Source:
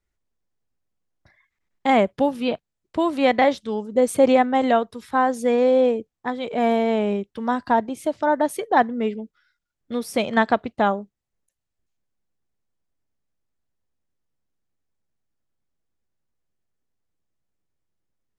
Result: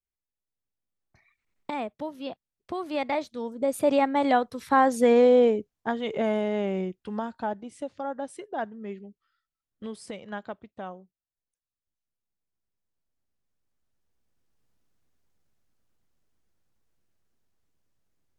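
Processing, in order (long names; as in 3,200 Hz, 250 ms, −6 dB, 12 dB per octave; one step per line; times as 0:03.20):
camcorder AGC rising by 8.6 dB per second
source passing by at 0:05.02, 30 m/s, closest 19 metres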